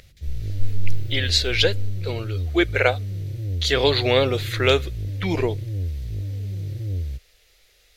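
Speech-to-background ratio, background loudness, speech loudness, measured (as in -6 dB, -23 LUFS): 8.0 dB, -30.0 LUFS, -22.0 LUFS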